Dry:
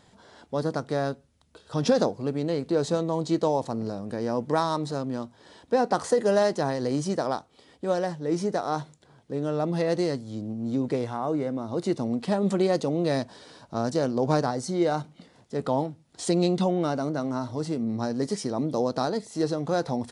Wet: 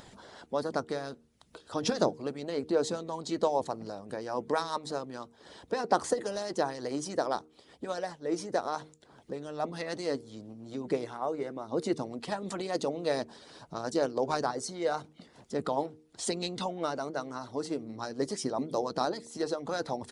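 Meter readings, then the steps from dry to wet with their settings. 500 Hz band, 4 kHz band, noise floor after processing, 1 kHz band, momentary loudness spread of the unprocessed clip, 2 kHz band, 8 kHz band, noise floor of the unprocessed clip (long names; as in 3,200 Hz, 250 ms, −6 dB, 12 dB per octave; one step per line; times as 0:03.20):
−6.0 dB, −2.0 dB, −62 dBFS, −3.5 dB, 9 LU, −3.0 dB, −1.5 dB, −60 dBFS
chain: harmonic and percussive parts rebalanced harmonic −15 dB
upward compression, threshold −43 dBFS
hum removal 77.46 Hz, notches 6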